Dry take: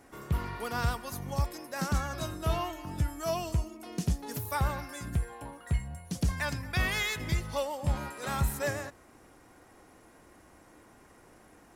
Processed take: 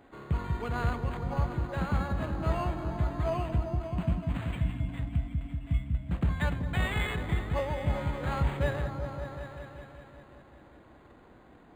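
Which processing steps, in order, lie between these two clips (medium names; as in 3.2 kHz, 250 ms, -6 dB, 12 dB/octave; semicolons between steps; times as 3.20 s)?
3.77–6.11 s: spectral selection erased 320–2100 Hz; 7.59–8.24 s: steep low-pass 3.6 kHz 96 dB/octave; delay with an opening low-pass 191 ms, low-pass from 400 Hz, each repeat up 1 oct, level -3 dB; decimation joined by straight lines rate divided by 8×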